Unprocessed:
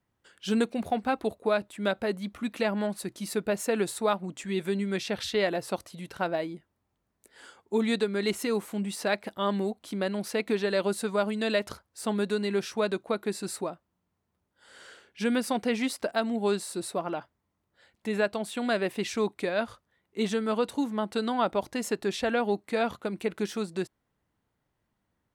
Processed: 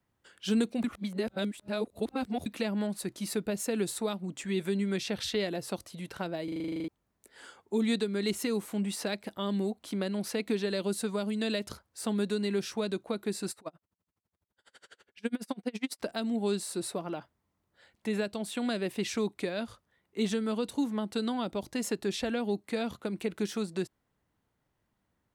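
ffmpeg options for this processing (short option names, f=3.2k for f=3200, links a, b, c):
-filter_complex "[0:a]asettb=1/sr,asplit=3[a][b][c];[a]atrim=end=13.514[d];[b]atrim=start=13.51:end=16.02,asetpts=PTS-STARTPTS,afade=t=in:d=0.004:c=qsin,afade=t=out:st=2.506:d=0.004:c=qsin,aeval=exprs='val(0)*pow(10,-35*(0.5-0.5*cos(2*PI*12*n/s))/20)':c=same[e];[c]atrim=start=16.016[f];[d][e]acrossfade=d=0.004:c1=hsin:c2=qsin[g];[g][f]acrossfade=d=0.004:c1=qsin:c2=hsin,asplit=14[h][i][j][k][l][m][n][o][p][q][r][s][t][u];[h]atrim=end=0.842[v];[i]atrim=start=0.838:end=2.462,asetpts=PTS-STARTPTS,areverse[w];[j]atrim=start=2.458:end=6.482[x];[k]atrim=start=6.438:end=6.482[y];[l]atrim=start=6.438:end=6.482[z];[m]atrim=start=6.438:end=6.482[aa];[n]atrim=start=6.438:end=6.482[ab];[o]atrim=start=6.438:end=6.482[ac];[p]atrim=start=6.438:end=6.482[ad];[q]atrim=start=6.438:end=6.482[ae];[r]atrim=start=6.438:end=6.482[af];[s]atrim=start=6.438:end=6.482[ag];[t]atrim=start=6.438:end=6.482[ah];[u]atrim=start=6.878[ai];[v][w]acrossfade=d=0.004:c1=hsin:c2=hsin[aj];[aj][x]acrossfade=d=0.004:c1=hsin:c2=hsin[ak];[ak][y]acrossfade=d=0.004:c1=hsin:c2=hsin[al];[al][z]acrossfade=d=0.004:c1=hsin:c2=hsin[am];[am][aa]acrossfade=d=0.004:c1=hsin:c2=hsin[an];[an][ab]acrossfade=d=0.004:c1=hsin:c2=hsin[ao];[ao][ac]acrossfade=d=0.004:c1=hsin:c2=hsin[ap];[ap][ad]acrossfade=d=0.004:c1=hsin:c2=hsin[aq];[aq][ae]acrossfade=d=0.004:c1=hsin:c2=hsin[ar];[ar][af]acrossfade=d=0.004:c1=hsin:c2=hsin[as];[as][ag]acrossfade=d=0.004:c1=hsin:c2=hsin[at];[at][ah]acrossfade=d=0.004:c1=hsin:c2=hsin[au];[au][ai]acrossfade=d=0.004:c1=hsin:c2=hsin,acrossover=split=380|3000[av][aw][ax];[aw]acompressor=threshold=-37dB:ratio=6[ay];[av][ay][ax]amix=inputs=3:normalize=0"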